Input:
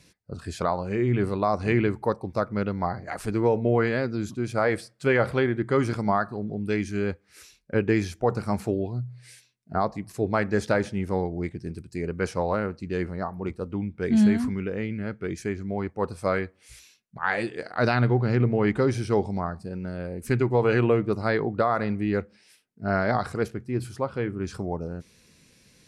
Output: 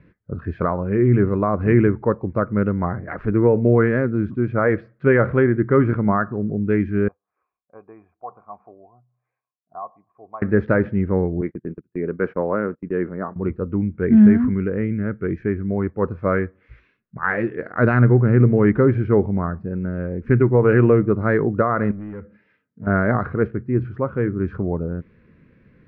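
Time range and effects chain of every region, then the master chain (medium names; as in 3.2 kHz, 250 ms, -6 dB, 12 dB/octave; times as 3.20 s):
7.08–10.42 s: cascade formant filter a + tilt EQ +3 dB/octave
11.41–13.36 s: high-pass 210 Hz + gate -41 dBFS, range -25 dB + treble shelf 4.4 kHz -10.5 dB
21.91–22.87 s: compression 12:1, threshold -32 dBFS + comb of notches 370 Hz + hard clipper -36.5 dBFS
whole clip: low-pass 1.7 kHz 24 dB/octave; peaking EQ 790 Hz -11 dB 0.78 oct; trim +8.5 dB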